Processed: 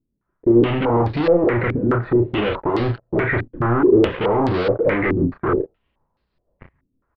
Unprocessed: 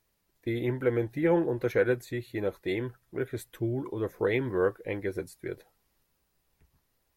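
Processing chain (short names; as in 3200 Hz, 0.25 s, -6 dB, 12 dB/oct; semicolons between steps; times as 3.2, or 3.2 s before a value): notch 780 Hz, Q 12; in parallel at -2.5 dB: limiter -20.5 dBFS, peak gain reduction 6.5 dB; on the sum: vocal rider within 3 dB 2 s; sample leveller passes 5; tremolo 6.3 Hz, depth 38%; soft clip -26.5 dBFS, distortion -9 dB; air absorption 420 m; doubler 34 ms -5.5 dB; stepped low-pass 4.7 Hz 270–4500 Hz; gain +7.5 dB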